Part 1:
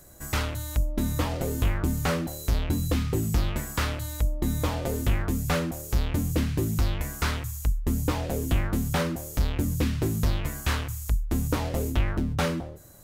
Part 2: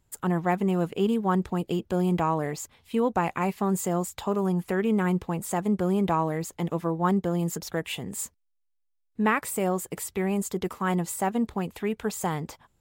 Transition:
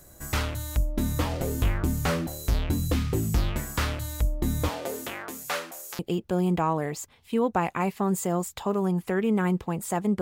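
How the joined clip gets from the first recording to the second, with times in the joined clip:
part 1
0:04.68–0:05.99: high-pass filter 290 Hz → 950 Hz
0:05.99: continue with part 2 from 0:01.60

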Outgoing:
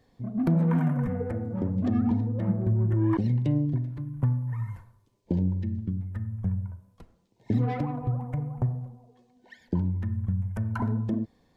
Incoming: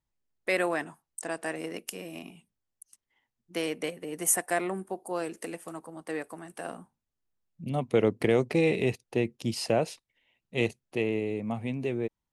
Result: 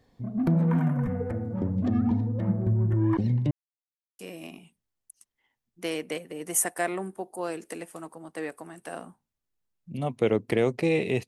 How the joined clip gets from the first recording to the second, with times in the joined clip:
outgoing
0:03.51–0:04.19: silence
0:04.19: continue with incoming from 0:01.91

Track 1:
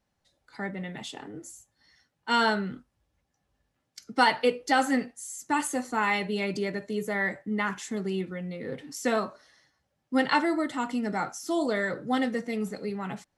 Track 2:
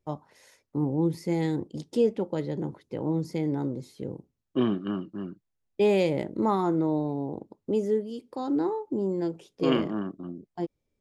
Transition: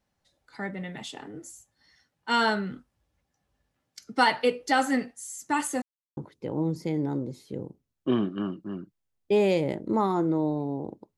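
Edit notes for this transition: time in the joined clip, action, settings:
track 1
0:05.82–0:06.17: silence
0:06.17: continue with track 2 from 0:02.66

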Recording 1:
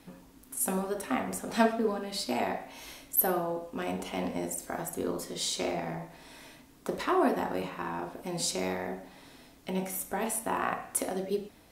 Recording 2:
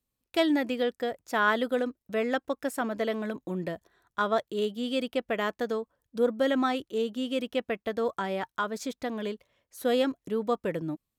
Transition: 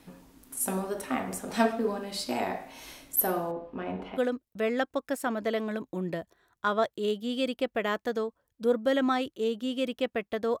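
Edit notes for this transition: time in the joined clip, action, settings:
recording 1
0:03.51–0:04.19: high-frequency loss of the air 380 metres
0:04.16: continue with recording 2 from 0:01.70, crossfade 0.06 s

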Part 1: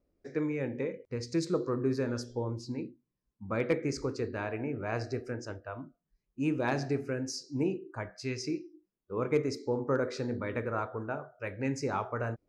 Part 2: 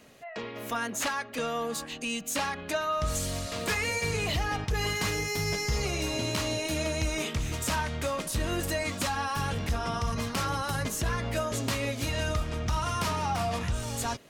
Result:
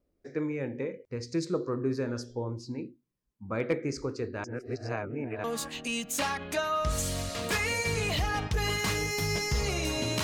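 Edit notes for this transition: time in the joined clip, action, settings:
part 1
0:04.44–0:05.44: reverse
0:05.44: continue with part 2 from 0:01.61

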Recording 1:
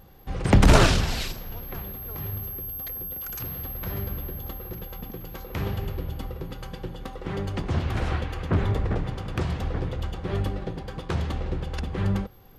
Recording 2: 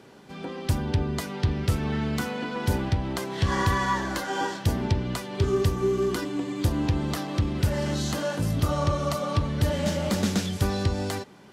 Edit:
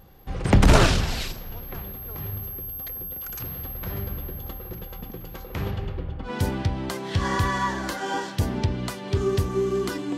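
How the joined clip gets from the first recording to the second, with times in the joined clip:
recording 1
0:05.70–0:06.32: low-pass filter 6,600 Hz → 1,700 Hz
0:06.27: continue with recording 2 from 0:02.54, crossfade 0.10 s

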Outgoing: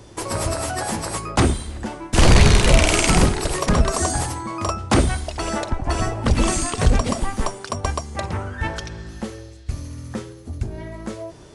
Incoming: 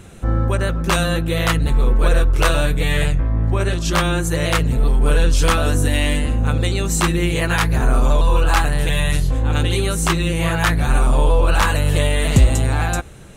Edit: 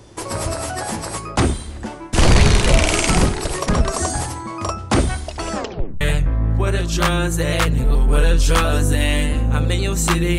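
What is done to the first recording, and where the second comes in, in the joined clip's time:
outgoing
0:05.53: tape stop 0.48 s
0:06.01: continue with incoming from 0:02.94

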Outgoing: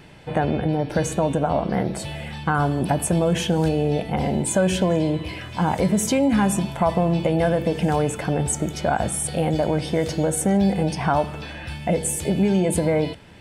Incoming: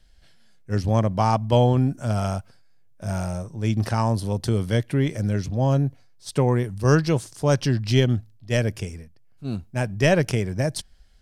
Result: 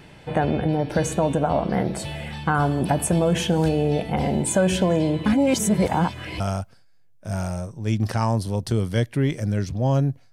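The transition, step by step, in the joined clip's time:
outgoing
0:05.26–0:06.40: reverse
0:06.40: continue with incoming from 0:02.17

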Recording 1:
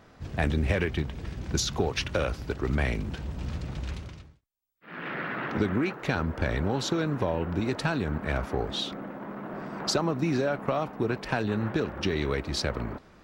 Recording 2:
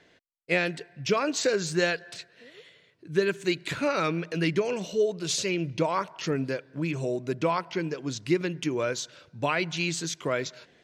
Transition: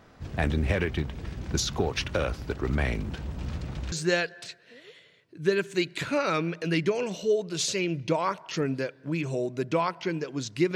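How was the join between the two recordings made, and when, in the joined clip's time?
recording 1
0:03.92: continue with recording 2 from 0:01.62

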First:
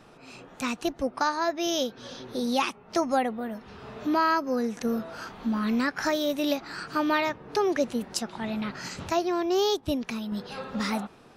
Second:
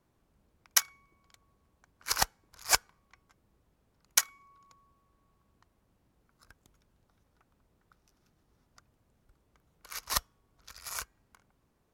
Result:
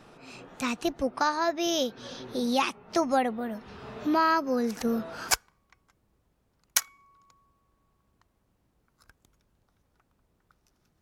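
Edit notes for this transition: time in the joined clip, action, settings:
first
0:04.67: mix in second from 0:02.08 0.64 s −16.5 dB
0:05.31: continue with second from 0:02.72

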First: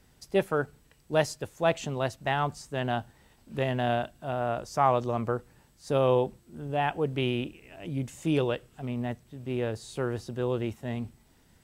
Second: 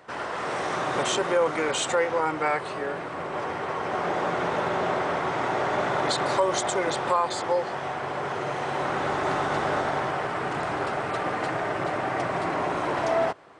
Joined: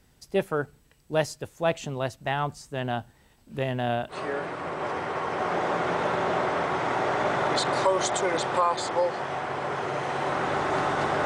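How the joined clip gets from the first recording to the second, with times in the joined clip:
first
0:04.13: continue with second from 0:02.66, crossfade 0.10 s

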